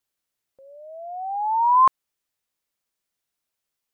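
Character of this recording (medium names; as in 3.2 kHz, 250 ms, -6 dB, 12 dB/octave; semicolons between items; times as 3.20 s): noise floor -83 dBFS; spectral tilt +2.5 dB/octave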